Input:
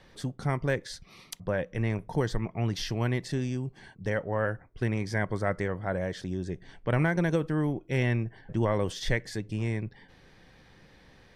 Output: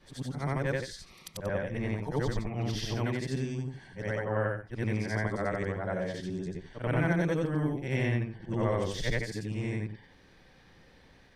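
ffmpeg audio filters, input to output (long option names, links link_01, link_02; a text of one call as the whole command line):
ffmpeg -i in.wav -af "afftfilt=real='re':imag='-im':win_size=8192:overlap=0.75,volume=2.5dB" out.wav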